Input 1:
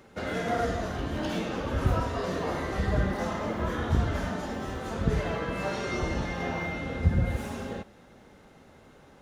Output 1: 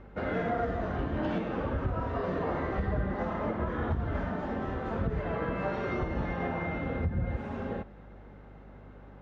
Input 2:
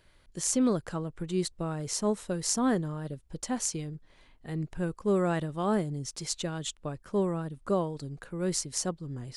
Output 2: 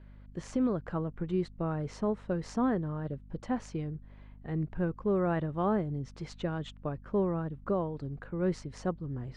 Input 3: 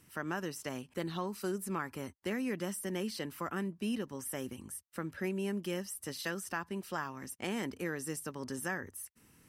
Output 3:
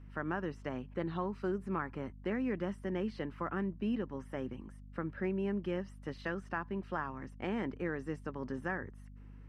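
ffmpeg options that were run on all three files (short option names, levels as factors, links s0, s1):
-af "lowpass=1900,alimiter=limit=0.0794:level=0:latency=1:release=304,aeval=exprs='val(0)+0.00282*(sin(2*PI*50*n/s)+sin(2*PI*2*50*n/s)/2+sin(2*PI*3*50*n/s)/3+sin(2*PI*4*50*n/s)/4+sin(2*PI*5*50*n/s)/5)':c=same,volume=1.12"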